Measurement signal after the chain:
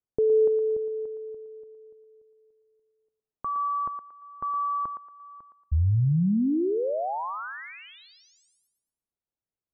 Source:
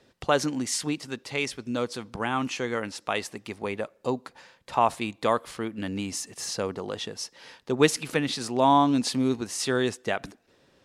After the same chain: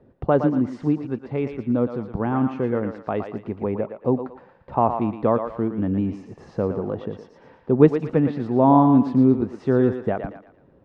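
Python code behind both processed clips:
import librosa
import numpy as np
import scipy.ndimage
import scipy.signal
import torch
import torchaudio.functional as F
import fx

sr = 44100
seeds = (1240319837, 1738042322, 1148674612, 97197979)

y = scipy.signal.sosfilt(scipy.signal.butter(2, 1100.0, 'lowpass', fs=sr, output='sos'), x)
y = fx.low_shelf(y, sr, hz=490.0, db=11.5)
y = fx.echo_thinned(y, sr, ms=115, feedback_pct=40, hz=570.0, wet_db=-6)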